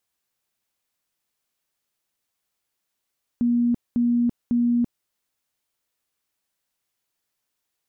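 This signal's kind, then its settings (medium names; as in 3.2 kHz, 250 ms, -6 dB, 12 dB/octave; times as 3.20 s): tone bursts 239 Hz, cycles 80, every 0.55 s, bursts 3, -17 dBFS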